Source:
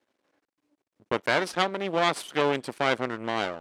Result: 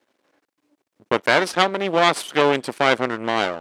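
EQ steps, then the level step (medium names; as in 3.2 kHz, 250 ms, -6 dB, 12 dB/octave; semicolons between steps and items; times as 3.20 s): bass shelf 110 Hz -7 dB; +7.5 dB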